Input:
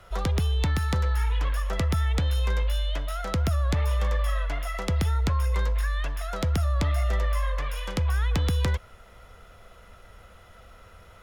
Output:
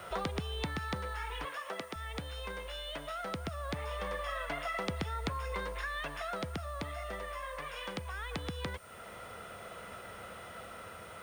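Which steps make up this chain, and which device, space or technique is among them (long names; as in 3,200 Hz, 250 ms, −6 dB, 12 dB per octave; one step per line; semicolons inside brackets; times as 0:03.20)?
medium wave at night (band-pass filter 150–4,000 Hz; downward compressor 4 to 1, threshold −42 dBFS, peak gain reduction 14 dB; amplitude tremolo 0.2 Hz, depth 41%; steady tone 9,000 Hz −69 dBFS; white noise bed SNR 24 dB)
0:01.45–0:01.96: high-pass filter 270 Hz 12 dB per octave
level +7 dB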